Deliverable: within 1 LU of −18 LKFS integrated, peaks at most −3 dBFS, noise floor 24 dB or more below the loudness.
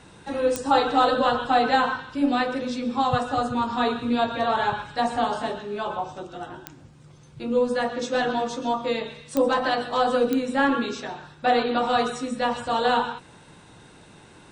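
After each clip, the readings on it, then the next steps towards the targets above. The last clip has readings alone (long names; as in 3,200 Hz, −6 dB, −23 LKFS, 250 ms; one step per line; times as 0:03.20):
number of clicks 4; integrated loudness −24.0 LKFS; sample peak −7.5 dBFS; target loudness −18.0 LKFS
→ click removal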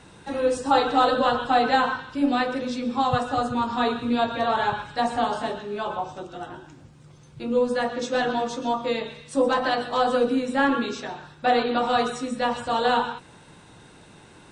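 number of clicks 0; integrated loudness −24.0 LKFS; sample peak −7.5 dBFS; target loudness −18.0 LKFS
→ level +6 dB
brickwall limiter −3 dBFS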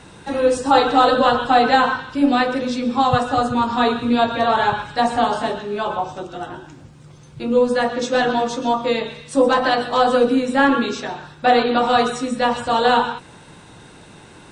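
integrated loudness −18.5 LKFS; sample peak −3.0 dBFS; background noise floor −44 dBFS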